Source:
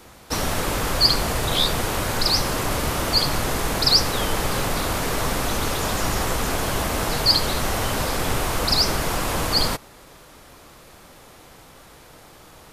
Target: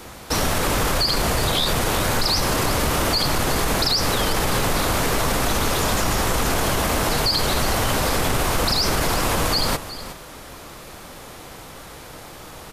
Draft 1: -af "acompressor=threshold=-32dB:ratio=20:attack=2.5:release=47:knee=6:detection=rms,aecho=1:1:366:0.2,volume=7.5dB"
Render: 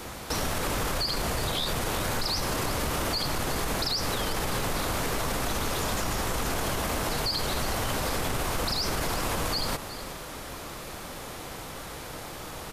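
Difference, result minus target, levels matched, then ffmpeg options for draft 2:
compressor: peak gain reduction +8.5 dB
-af "acompressor=threshold=-23dB:ratio=20:attack=2.5:release=47:knee=6:detection=rms,aecho=1:1:366:0.2,volume=7.5dB"

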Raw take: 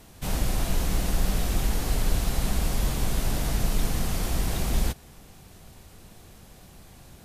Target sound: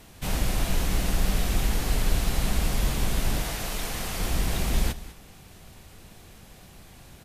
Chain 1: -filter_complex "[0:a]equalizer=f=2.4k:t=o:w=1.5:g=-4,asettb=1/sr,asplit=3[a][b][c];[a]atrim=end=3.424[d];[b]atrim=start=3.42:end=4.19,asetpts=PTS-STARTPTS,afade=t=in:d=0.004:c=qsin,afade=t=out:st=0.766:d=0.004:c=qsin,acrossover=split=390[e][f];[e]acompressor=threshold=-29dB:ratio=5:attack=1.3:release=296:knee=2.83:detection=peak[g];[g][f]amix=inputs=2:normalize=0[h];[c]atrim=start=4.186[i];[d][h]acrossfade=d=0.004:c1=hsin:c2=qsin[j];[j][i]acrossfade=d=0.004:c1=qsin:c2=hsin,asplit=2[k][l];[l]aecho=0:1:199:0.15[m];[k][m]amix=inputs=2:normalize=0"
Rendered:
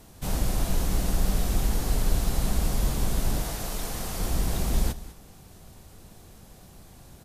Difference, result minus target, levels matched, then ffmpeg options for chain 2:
2000 Hz band -5.5 dB
-filter_complex "[0:a]equalizer=f=2.4k:t=o:w=1.5:g=3.5,asettb=1/sr,asplit=3[a][b][c];[a]atrim=end=3.424[d];[b]atrim=start=3.42:end=4.19,asetpts=PTS-STARTPTS,afade=t=in:d=0.004:c=qsin,afade=t=out:st=0.766:d=0.004:c=qsin,acrossover=split=390[e][f];[e]acompressor=threshold=-29dB:ratio=5:attack=1.3:release=296:knee=2.83:detection=peak[g];[g][f]amix=inputs=2:normalize=0[h];[c]atrim=start=4.186[i];[d][h]acrossfade=d=0.004:c1=hsin:c2=qsin[j];[j][i]acrossfade=d=0.004:c1=qsin:c2=hsin,asplit=2[k][l];[l]aecho=0:1:199:0.15[m];[k][m]amix=inputs=2:normalize=0"

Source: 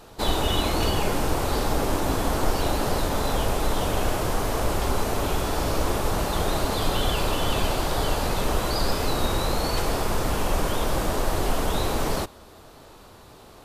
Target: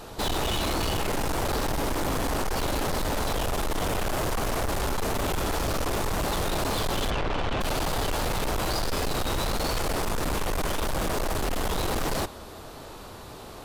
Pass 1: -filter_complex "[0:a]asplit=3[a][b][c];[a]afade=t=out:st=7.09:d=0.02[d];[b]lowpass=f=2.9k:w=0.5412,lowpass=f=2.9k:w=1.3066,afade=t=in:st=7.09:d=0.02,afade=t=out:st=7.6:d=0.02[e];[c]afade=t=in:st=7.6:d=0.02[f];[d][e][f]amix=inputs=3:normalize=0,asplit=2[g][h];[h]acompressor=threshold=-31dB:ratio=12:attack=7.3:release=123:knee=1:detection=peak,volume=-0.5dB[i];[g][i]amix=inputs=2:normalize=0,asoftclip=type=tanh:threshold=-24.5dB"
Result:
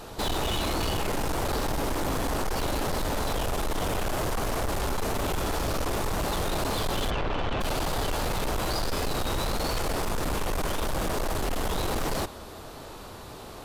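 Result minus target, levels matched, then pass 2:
compressor: peak gain reduction +10 dB
-filter_complex "[0:a]asplit=3[a][b][c];[a]afade=t=out:st=7.09:d=0.02[d];[b]lowpass=f=2.9k:w=0.5412,lowpass=f=2.9k:w=1.3066,afade=t=in:st=7.09:d=0.02,afade=t=out:st=7.6:d=0.02[e];[c]afade=t=in:st=7.6:d=0.02[f];[d][e][f]amix=inputs=3:normalize=0,asplit=2[g][h];[h]acompressor=threshold=-20dB:ratio=12:attack=7.3:release=123:knee=1:detection=peak,volume=-0.5dB[i];[g][i]amix=inputs=2:normalize=0,asoftclip=type=tanh:threshold=-24.5dB"

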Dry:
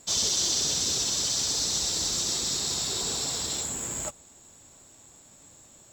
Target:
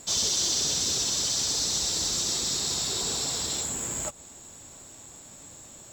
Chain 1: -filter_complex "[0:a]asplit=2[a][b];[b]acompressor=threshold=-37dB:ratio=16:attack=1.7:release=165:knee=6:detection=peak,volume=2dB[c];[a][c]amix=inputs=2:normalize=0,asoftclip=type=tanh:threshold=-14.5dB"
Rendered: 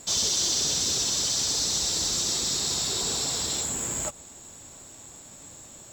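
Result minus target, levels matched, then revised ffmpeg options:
compressor: peak gain reduction -9 dB
-filter_complex "[0:a]asplit=2[a][b];[b]acompressor=threshold=-46.5dB:ratio=16:attack=1.7:release=165:knee=6:detection=peak,volume=2dB[c];[a][c]amix=inputs=2:normalize=0,asoftclip=type=tanh:threshold=-14.5dB"

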